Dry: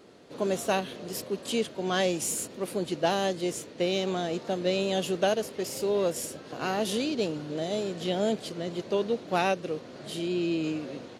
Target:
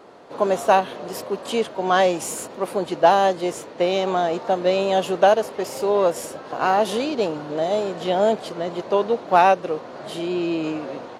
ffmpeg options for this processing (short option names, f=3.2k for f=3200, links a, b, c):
-af "equalizer=f=910:w=0.71:g=15"